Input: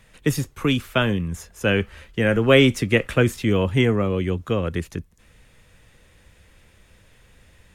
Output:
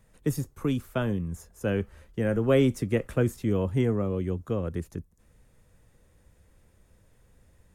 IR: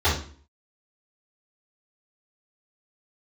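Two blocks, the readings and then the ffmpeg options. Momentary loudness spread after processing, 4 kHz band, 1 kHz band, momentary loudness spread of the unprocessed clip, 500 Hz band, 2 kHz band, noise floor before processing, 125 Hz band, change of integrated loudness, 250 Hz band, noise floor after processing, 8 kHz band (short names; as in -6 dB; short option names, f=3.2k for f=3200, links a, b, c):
11 LU, -17.0 dB, -10.0 dB, 12 LU, -6.5 dB, -15.0 dB, -56 dBFS, -5.5 dB, -7.0 dB, -6.0 dB, -62 dBFS, -9.0 dB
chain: -af "equalizer=f=2.8k:w=0.66:g=-12.5,volume=-5.5dB"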